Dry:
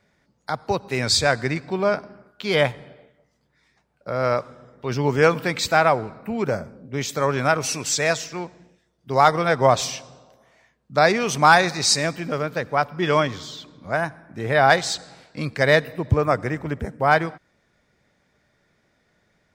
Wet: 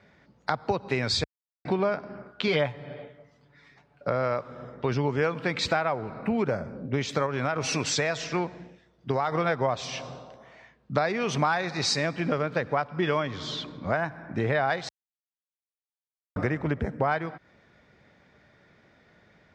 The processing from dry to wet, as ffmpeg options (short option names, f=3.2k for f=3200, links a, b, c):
-filter_complex "[0:a]asettb=1/sr,asplit=3[a][b][c];[a]atrim=end=2.474[d];[b]atrim=start=2.47:end=4.09,asetpts=PTS-STARTPTS,afade=t=in:d=0.004:c=qsin,afade=t=out:st=1.616:d=0.004:c=qsin,aecho=1:1:7:0.65,atrim=end_sample=71442[e];[c]atrim=start=4.086[f];[d][e]acrossfade=d=0.004:c1=hsin:c2=qsin[g];[g][f]acrossfade=d=0.004:c1=qsin:c2=hsin,asettb=1/sr,asplit=3[h][i][j];[h]atrim=end=7.264[k];[i]atrim=start=7.26:end=9.32,asetpts=PTS-STARTPTS,afade=t=in:d=0.004:c=qsin,afade=t=out:st=2.056:d=0.004:c=qsin,acompressor=threshold=-21dB:ratio=2.5:attack=3.2:release=140:knee=1:detection=peak[l];[j]atrim=start=9.316[m];[k][l]acrossfade=d=0.004:c1=hsin:c2=qsin[n];[n][m]acrossfade=d=0.004:c1=qsin:c2=hsin,asplit=5[o][p][q][r][s];[o]atrim=end=1.24,asetpts=PTS-STARTPTS,afade=t=out:st=1.236:d=0.004:c=hsin[t];[p]atrim=start=1.24:end=1.65,asetpts=PTS-STARTPTS,volume=0[u];[q]atrim=start=1.65:end=14.89,asetpts=PTS-STARTPTS,afade=t=in:d=0.004:c=hsin,afade=t=out:st=13.236:d=0.004:c=hsin[v];[r]atrim=start=14.89:end=16.36,asetpts=PTS-STARTPTS,volume=0[w];[s]atrim=start=16.36,asetpts=PTS-STARTPTS,afade=t=in:d=0.004:c=hsin[x];[t][u][v][w][x]concat=n=5:v=0:a=1,lowpass=3.9k,acompressor=threshold=-30dB:ratio=6,highpass=50,volume=6.5dB"